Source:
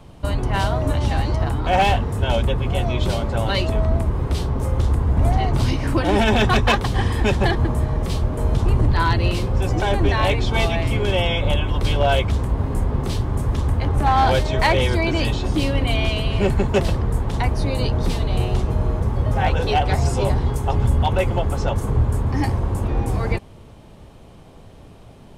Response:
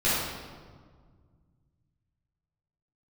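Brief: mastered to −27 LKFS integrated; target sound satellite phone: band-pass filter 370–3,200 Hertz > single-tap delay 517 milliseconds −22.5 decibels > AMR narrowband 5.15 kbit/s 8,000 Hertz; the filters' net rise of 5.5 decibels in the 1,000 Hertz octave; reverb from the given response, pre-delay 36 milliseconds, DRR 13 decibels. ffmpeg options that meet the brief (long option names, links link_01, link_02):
-filter_complex "[0:a]equalizer=frequency=1000:width_type=o:gain=7.5,asplit=2[link_01][link_02];[1:a]atrim=start_sample=2205,adelay=36[link_03];[link_02][link_03]afir=irnorm=-1:irlink=0,volume=-27dB[link_04];[link_01][link_04]amix=inputs=2:normalize=0,highpass=370,lowpass=3200,aecho=1:1:517:0.075,volume=-3dB" -ar 8000 -c:a libopencore_amrnb -b:a 5150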